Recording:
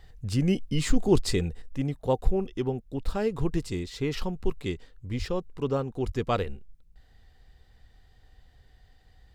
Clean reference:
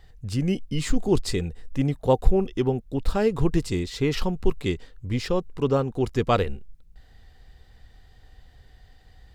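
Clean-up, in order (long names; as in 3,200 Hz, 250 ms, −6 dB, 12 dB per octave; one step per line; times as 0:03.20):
high-pass at the plosives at 0:05.18/0:06.05
level 0 dB, from 0:01.62 +5.5 dB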